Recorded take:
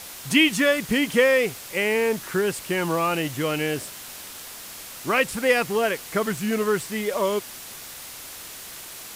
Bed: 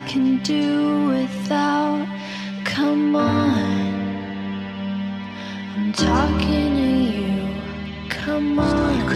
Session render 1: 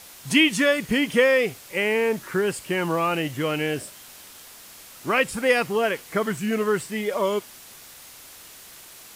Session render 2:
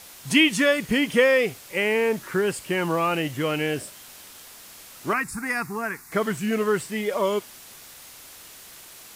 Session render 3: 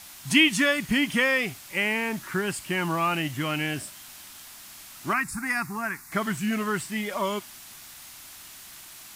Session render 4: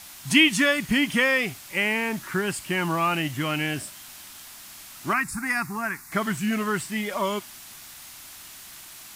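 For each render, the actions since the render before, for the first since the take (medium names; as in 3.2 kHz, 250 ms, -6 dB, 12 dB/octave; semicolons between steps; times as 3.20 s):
noise print and reduce 6 dB
5.13–6.12 s: static phaser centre 1.3 kHz, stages 4
peaking EQ 470 Hz -14.5 dB 0.51 oct
trim +1.5 dB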